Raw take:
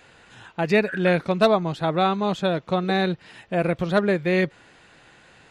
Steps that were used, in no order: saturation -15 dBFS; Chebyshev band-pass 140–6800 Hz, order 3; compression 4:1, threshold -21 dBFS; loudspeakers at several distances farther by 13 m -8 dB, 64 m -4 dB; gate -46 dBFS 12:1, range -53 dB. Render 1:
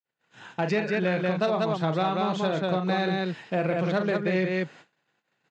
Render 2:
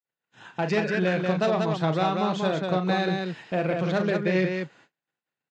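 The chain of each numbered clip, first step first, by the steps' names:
loudspeakers at several distances > compression > saturation > Chebyshev band-pass > gate; saturation > Chebyshev band-pass > gate > compression > loudspeakers at several distances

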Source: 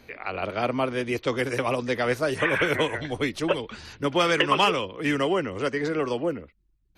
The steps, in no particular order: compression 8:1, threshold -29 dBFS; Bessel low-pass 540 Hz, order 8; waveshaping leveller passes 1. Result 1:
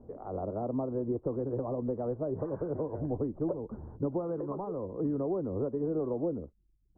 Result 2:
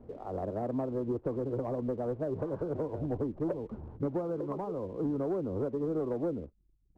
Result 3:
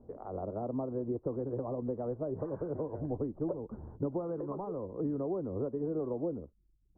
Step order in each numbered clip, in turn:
compression > waveshaping leveller > Bessel low-pass; compression > Bessel low-pass > waveshaping leveller; waveshaping leveller > compression > Bessel low-pass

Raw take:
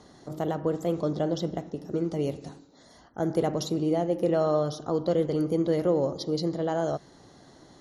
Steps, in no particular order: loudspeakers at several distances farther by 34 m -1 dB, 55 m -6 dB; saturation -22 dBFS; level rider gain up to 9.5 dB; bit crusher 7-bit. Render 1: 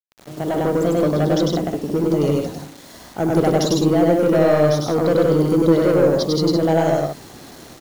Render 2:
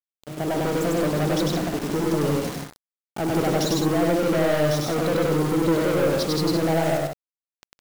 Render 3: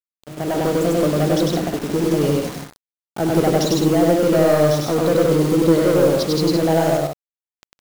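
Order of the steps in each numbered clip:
saturation > loudspeakers at several distances > level rider > bit crusher; bit crusher > level rider > saturation > loudspeakers at several distances; saturation > bit crusher > loudspeakers at several distances > level rider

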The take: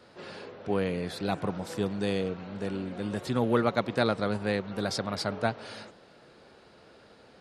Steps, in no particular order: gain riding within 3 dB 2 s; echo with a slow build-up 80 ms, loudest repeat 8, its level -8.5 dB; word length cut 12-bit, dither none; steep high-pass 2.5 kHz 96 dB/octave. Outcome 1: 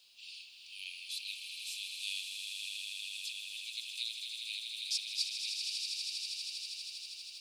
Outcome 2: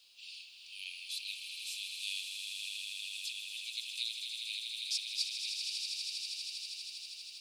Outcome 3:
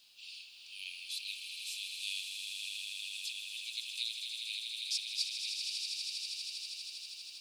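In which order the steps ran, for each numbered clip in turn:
gain riding > steep high-pass > word length cut > echo with a slow build-up; steep high-pass > gain riding > word length cut > echo with a slow build-up; steep high-pass > word length cut > gain riding > echo with a slow build-up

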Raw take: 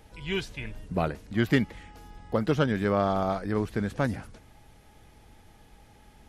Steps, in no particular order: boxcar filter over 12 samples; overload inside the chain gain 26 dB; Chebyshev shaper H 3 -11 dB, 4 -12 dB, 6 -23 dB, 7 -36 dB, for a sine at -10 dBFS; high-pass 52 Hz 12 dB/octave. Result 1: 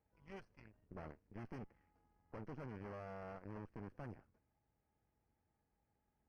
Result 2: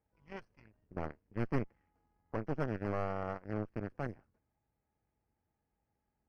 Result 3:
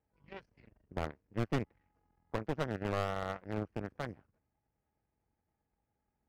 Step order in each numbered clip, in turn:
high-pass > overload inside the chain > Chebyshev shaper > boxcar filter; high-pass > Chebyshev shaper > overload inside the chain > boxcar filter; boxcar filter > Chebyshev shaper > high-pass > overload inside the chain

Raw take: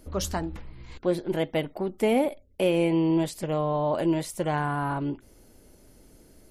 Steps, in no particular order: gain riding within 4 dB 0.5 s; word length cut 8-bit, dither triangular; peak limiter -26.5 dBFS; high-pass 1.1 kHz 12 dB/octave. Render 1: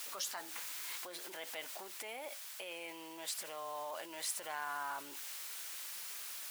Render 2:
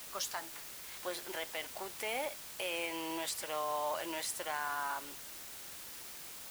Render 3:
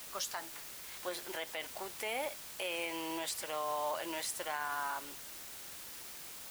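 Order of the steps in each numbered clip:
word length cut > gain riding > peak limiter > high-pass; high-pass > gain riding > peak limiter > word length cut; high-pass > gain riding > word length cut > peak limiter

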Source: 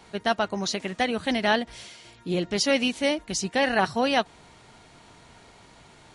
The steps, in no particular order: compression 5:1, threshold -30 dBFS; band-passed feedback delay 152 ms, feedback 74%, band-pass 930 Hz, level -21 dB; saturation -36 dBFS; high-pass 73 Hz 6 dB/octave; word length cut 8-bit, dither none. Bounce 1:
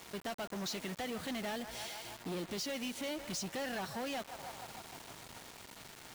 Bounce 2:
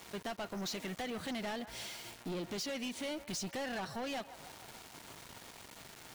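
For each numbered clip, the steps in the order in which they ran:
band-passed feedback delay > compression > saturation > high-pass > word length cut; high-pass > word length cut > compression > band-passed feedback delay > saturation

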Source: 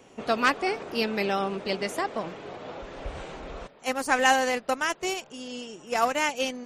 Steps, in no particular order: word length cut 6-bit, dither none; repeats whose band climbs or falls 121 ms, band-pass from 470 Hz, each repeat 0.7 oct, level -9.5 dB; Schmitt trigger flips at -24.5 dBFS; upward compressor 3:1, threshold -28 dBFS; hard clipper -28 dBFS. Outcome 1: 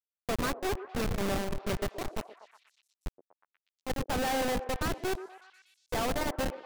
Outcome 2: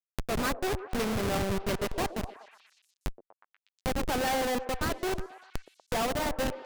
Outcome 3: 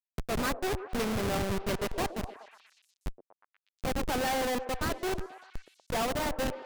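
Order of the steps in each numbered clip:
Schmitt trigger > word length cut > upward compressor > hard clipper > repeats whose band climbs or falls; word length cut > Schmitt trigger > hard clipper > upward compressor > repeats whose band climbs or falls; word length cut > upward compressor > Schmitt trigger > repeats whose band climbs or falls > hard clipper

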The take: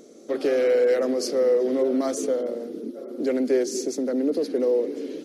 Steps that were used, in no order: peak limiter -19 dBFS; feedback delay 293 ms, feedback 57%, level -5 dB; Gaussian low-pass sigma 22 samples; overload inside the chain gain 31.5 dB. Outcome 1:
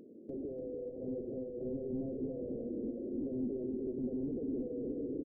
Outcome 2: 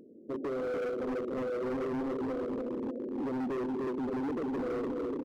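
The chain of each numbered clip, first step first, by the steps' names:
peak limiter > overload inside the chain > Gaussian low-pass > feedback delay; Gaussian low-pass > feedback delay > peak limiter > overload inside the chain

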